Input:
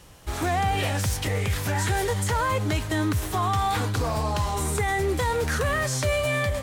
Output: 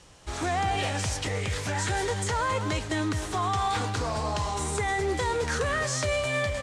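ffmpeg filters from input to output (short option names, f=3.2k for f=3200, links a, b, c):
-filter_complex "[0:a]lowpass=f=8.5k:w=0.5412,lowpass=f=8.5k:w=1.3066,bass=f=250:g=-3,treble=f=4k:g=3,asplit=2[a][b];[b]adelay=210,highpass=300,lowpass=3.4k,asoftclip=type=hard:threshold=-24dB,volume=-8dB[c];[a][c]amix=inputs=2:normalize=0,volume=-2.5dB"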